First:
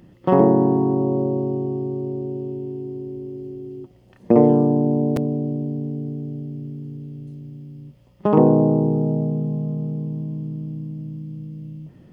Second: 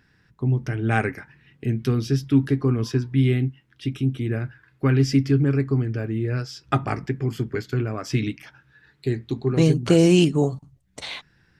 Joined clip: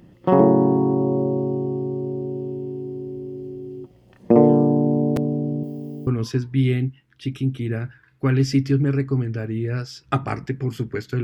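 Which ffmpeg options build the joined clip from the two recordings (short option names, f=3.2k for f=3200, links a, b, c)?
-filter_complex "[0:a]asettb=1/sr,asplit=3[a][b][c];[a]atrim=end=5.634[d];[b]atrim=start=5.63:end=6.07,asetpts=PTS-STARTPTS,afade=t=in:d=0.004:c=qsin,afade=t=out:st=0.436:d=0.004:c=qsin,aemphasis=mode=production:type=bsi[e];[c]atrim=start=6.066[f];[d][e]acrossfade=d=0.004:c1=hsin:c2=qsin[g];[g][f]acrossfade=d=0.004:c1=qsin:c2=hsin,apad=whole_dur=11.23,atrim=end=11.23,atrim=end=6.072[h];[1:a]atrim=start=2.668:end=7.83[i];[h][i]acrossfade=d=0.004:c1=hsin:c2=hsin"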